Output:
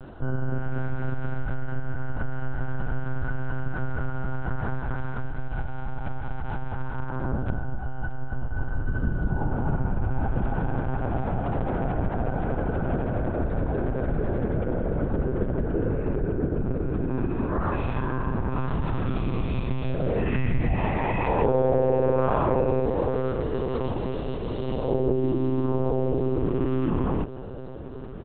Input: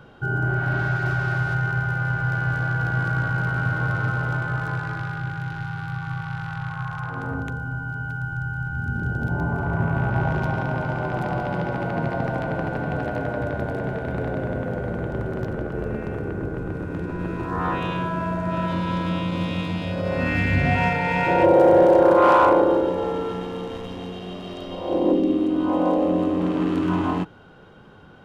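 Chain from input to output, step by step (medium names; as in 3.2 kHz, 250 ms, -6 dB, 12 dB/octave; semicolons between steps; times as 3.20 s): tilt EQ -2.5 dB/octave; comb 2.4 ms, depth 43%; compression 2.5:1, threshold -24 dBFS, peak gain reduction 11 dB; on a send: echo that smears into a reverb 1643 ms, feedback 46%, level -15 dB; on the sum: monotone LPC vocoder at 8 kHz 130 Hz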